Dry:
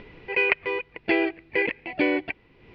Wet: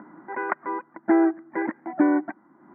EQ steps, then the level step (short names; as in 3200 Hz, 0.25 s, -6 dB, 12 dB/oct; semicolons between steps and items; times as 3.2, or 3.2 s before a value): elliptic band-pass 210–1500 Hz, stop band 60 dB; bell 320 Hz +9.5 dB 0.27 oct; fixed phaser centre 1100 Hz, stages 4; +8.0 dB